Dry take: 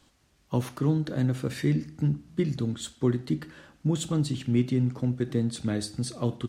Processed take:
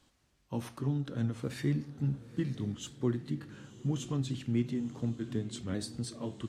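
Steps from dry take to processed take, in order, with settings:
pitch shifter swept by a sawtooth −2 semitones, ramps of 1,435 ms
feedback delay with all-pass diffusion 926 ms, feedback 44%, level −15.5 dB
level −6 dB

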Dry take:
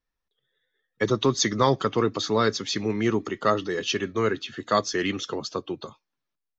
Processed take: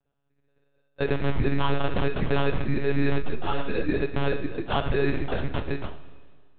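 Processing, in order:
hearing-aid frequency compression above 1,500 Hz 4 to 1
low-pass filter 2,100 Hz 12 dB per octave
hum removal 90.48 Hz, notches 29
brickwall limiter −19 dBFS, peak gain reduction 10 dB
decimation without filtering 21×
flanger 0.97 Hz, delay 4.8 ms, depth 4.8 ms, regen −44%
one-pitch LPC vocoder at 8 kHz 140 Hz
four-comb reverb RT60 1.8 s, combs from 27 ms, DRR 13.5 dB
0:03.22–0:03.89: string-ensemble chorus
level +8.5 dB

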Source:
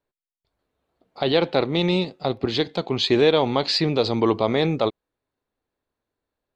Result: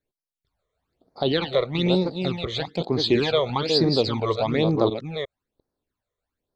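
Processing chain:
delay that plays each chunk backwards 350 ms, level −6 dB
all-pass phaser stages 12, 1.1 Hz, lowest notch 260–2,900 Hz

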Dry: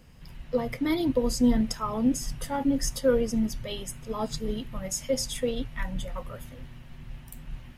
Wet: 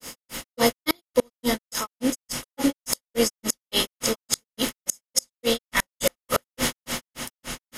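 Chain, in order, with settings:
compressor on every frequency bin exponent 0.6
RIAA equalisation recording
automatic gain control gain up to 16 dB
granular cloud 160 ms, grains 3.5 per second, spray 28 ms, pitch spread up and down by 0 semitones
gate with flip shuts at −10 dBFS, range −37 dB
level +4 dB

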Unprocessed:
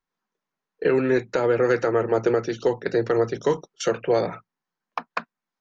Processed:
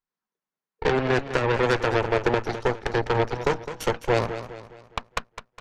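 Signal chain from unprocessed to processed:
harmonic generator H 3 −14 dB, 6 −14 dB, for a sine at −9.5 dBFS
feedback echo with a swinging delay time 206 ms, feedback 43%, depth 102 cents, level −11.5 dB

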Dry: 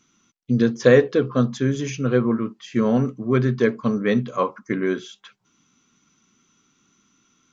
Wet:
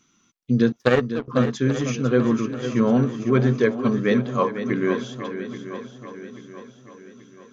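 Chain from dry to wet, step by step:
0:00.72–0:01.28: power curve on the samples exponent 2
feedback echo with a long and a short gap by turns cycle 833 ms, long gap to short 1.5 to 1, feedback 45%, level −10 dB

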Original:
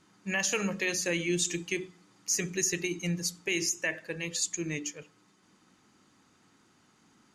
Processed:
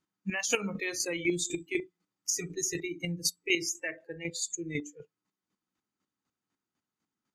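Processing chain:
noise reduction from a noise print of the clip's start 24 dB
square-wave tremolo 4 Hz, depth 60%, duty 20%
level +5 dB

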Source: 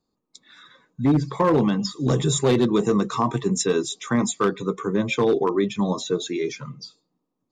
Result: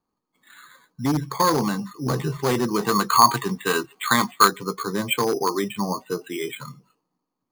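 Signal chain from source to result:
flat-topped bell 1,800 Hz +8 dB 2.6 octaves, from 0:02.79 +15 dB, from 0:04.47 +8 dB
bad sample-rate conversion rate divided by 8×, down filtered, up hold
level −4 dB

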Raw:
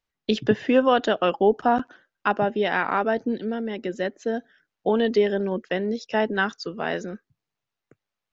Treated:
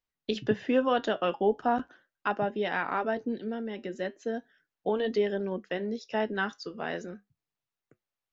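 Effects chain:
flanger 0.39 Hz, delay 6.2 ms, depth 3.4 ms, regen −73%
level −2.5 dB

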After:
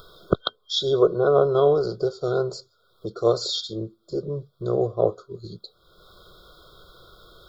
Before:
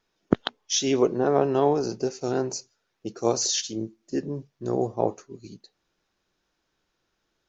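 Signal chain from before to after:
in parallel at +1.5 dB: upward compression, threshold −25 dBFS
on the sum: parametric band 700 Hz −3 dB 0.52 octaves
phaser with its sweep stopped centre 1,300 Hz, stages 8
brick-wall band-stop 1,500–3,200 Hz

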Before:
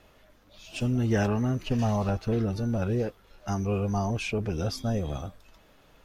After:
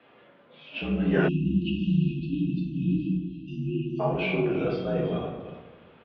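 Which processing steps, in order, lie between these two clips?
mains-hum notches 50/100/150/200/250/300/350 Hz
far-end echo of a speakerphone 330 ms, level −14 dB
convolution reverb RT60 1.1 s, pre-delay 6 ms, DRR −3.5 dB
single-sideband voice off tune −55 Hz 210–3,400 Hz
time-frequency box erased 0:01.28–0:04.00, 360–2,500 Hz

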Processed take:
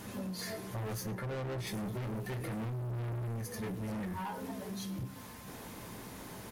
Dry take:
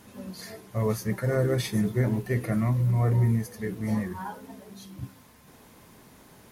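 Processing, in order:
0:01.09–0:01.67: high-shelf EQ 2,100 Hz −10.5 dB
gain into a clipping stage and back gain 32.5 dB
convolution reverb RT60 0.15 s, pre-delay 7 ms, DRR 8.5 dB
downward compressor, threshold −40 dBFS, peak gain reduction 9.5 dB
single-tap delay 108 ms −20.5 dB
soft clipping −39.5 dBFS, distortion −18 dB
level +6 dB

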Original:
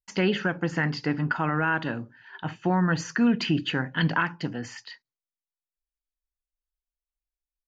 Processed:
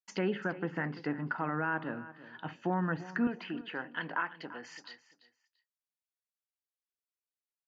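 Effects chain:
treble cut that deepens with the level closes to 1,800 Hz, closed at −24 dBFS
high-pass filter 180 Hz 12 dB per octave, from 0:03.27 430 Hz
repeating echo 340 ms, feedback 23%, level −16 dB
level −6.5 dB

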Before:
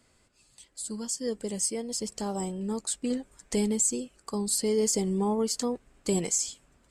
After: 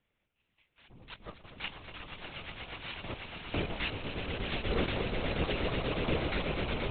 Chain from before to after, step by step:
samples sorted by size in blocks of 8 samples
parametric band 2,500 Hz +9 dB 0.82 octaves
harmonic generator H 7 −15 dB, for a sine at −11.5 dBFS
on a send: echo that builds up and dies away 121 ms, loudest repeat 8, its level −7 dB
on the sum: linear-prediction vocoder at 8 kHz whisper
level −2.5 dB

